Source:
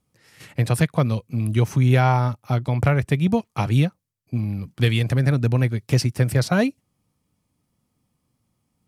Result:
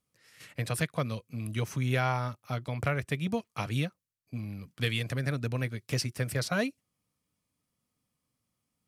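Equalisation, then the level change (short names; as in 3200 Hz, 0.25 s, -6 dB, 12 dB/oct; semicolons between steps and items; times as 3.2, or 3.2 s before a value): low shelf 400 Hz -9 dB; bell 840 Hz -6.5 dB 0.39 oct; notch 360 Hz, Q 12; -5.0 dB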